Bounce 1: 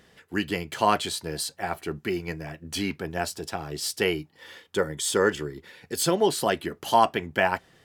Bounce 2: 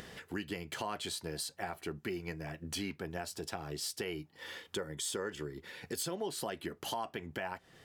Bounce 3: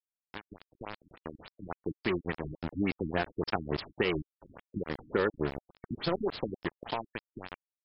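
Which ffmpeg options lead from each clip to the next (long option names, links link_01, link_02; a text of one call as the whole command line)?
ffmpeg -i in.wav -af "acompressor=mode=upward:threshold=-42dB:ratio=2.5,alimiter=limit=-15.5dB:level=0:latency=1:release=132,acompressor=threshold=-40dB:ratio=2.5" out.wav
ffmpeg -i in.wav -af "dynaudnorm=framelen=500:gausssize=7:maxgain=10.5dB,aeval=exprs='val(0)*gte(abs(val(0)),0.0355)':channel_layout=same,afftfilt=real='re*lt(b*sr/1024,310*pow(5500/310,0.5+0.5*sin(2*PI*3.5*pts/sr)))':imag='im*lt(b*sr/1024,310*pow(5500/310,0.5+0.5*sin(2*PI*3.5*pts/sr)))':win_size=1024:overlap=0.75" out.wav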